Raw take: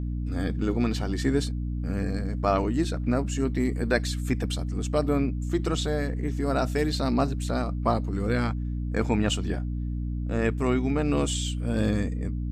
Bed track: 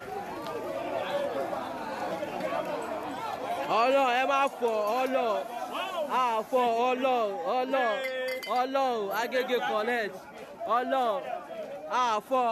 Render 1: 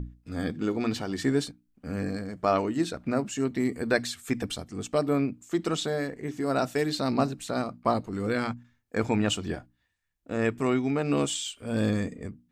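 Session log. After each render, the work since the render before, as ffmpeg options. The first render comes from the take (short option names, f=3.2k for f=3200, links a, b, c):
-af "bandreject=f=60:t=h:w=6,bandreject=f=120:t=h:w=6,bandreject=f=180:t=h:w=6,bandreject=f=240:t=h:w=6,bandreject=f=300:t=h:w=6"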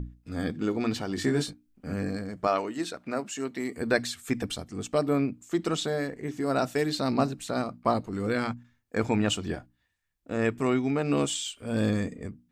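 -filter_complex "[0:a]asettb=1/sr,asplit=3[a][b][c];[a]atrim=end=1.154[d];[b]atrim=start=1.15:end=1.94,asetpts=PTS-STARTPTS,afade=t=in:d=0.004:c=qsin,afade=t=out:st=0.786:d=0.004:c=qsin,asplit=2[e][f];[f]adelay=20,volume=-4dB[g];[e][g]amix=inputs=2:normalize=0,atrim=end_sample=34839[h];[c]atrim=start=1.936[i];[d][h]acrossfade=d=0.004:c1=hsin:c2=qsin[j];[j][i]acrossfade=d=0.004:c1=qsin:c2=hsin,asettb=1/sr,asplit=3[k][l][m];[k]atrim=end=2.474[n];[l]atrim=start=2.47:end=3.77,asetpts=PTS-STARTPTS,afade=t=in:d=0.004:c=qsin,afade=t=out:st=1.296:d=0.004:c=qsin,highpass=f=480:p=1[o];[m]atrim=start=3.766[p];[n][o]acrossfade=d=0.004:c1=hsin:c2=qsin[q];[q][p]acrossfade=d=0.004:c1=qsin:c2=hsin"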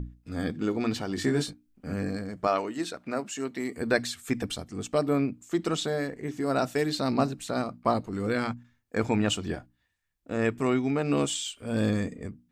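-af anull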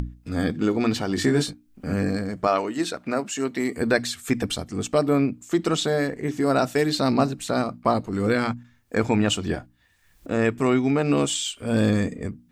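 -filter_complex "[0:a]asplit=2[a][b];[b]alimiter=limit=-19dB:level=0:latency=1:release=384,volume=2dB[c];[a][c]amix=inputs=2:normalize=0,acompressor=mode=upward:threshold=-32dB:ratio=2.5"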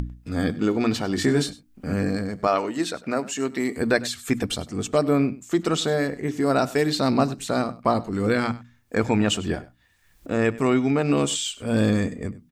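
-af "aecho=1:1:99:0.112"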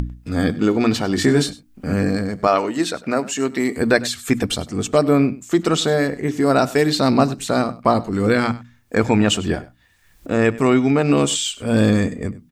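-af "volume=5dB"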